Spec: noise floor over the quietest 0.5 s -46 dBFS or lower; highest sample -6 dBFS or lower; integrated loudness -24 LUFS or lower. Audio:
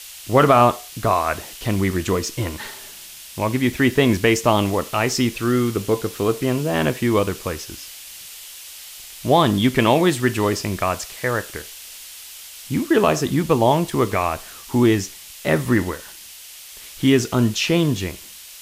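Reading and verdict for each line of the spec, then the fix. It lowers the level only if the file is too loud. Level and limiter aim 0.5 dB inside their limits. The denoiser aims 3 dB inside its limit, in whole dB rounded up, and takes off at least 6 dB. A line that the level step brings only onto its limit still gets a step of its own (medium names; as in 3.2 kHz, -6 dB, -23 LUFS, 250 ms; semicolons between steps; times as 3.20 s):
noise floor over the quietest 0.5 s -40 dBFS: fail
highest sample -3.5 dBFS: fail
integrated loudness -20.0 LUFS: fail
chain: noise reduction 6 dB, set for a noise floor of -40 dBFS; trim -4.5 dB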